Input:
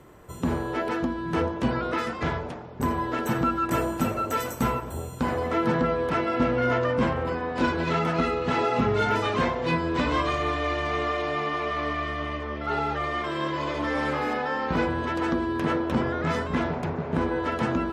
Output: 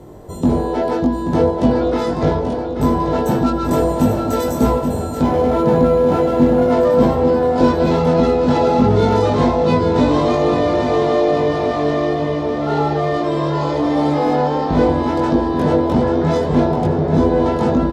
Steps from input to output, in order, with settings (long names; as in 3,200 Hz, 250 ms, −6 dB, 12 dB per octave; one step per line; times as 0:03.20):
high-shelf EQ 4,000 Hz −8 dB
double-tracking delay 20 ms −2 dB
in parallel at −4 dB: soft clipping −25 dBFS, distortion −9 dB
on the sum: flat-topped bell 1,800 Hz −11.5 dB
on a send: repeating echo 834 ms, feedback 56%, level −8 dB
0:05.22–0:06.71: on the sum: linearly interpolated sample-rate reduction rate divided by 4×
level +6.5 dB